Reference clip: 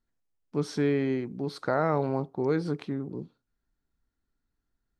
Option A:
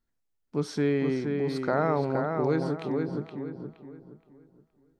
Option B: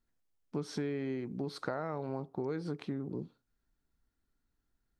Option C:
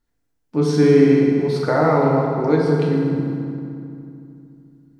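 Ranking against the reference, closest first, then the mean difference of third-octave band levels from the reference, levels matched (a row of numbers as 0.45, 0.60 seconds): B, A, C; 2.5, 5.0, 6.5 decibels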